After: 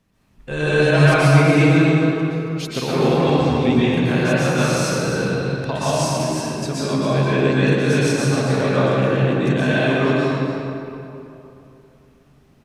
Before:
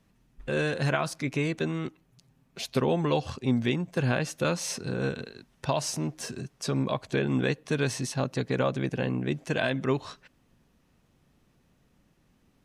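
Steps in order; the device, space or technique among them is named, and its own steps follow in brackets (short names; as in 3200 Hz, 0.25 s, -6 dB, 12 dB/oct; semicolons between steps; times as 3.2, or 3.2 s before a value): cave (echo 0.273 s -9.5 dB; reverb RT60 2.9 s, pre-delay 0.112 s, DRR -10 dB); 0.5–2.71 comb 6.4 ms, depth 96%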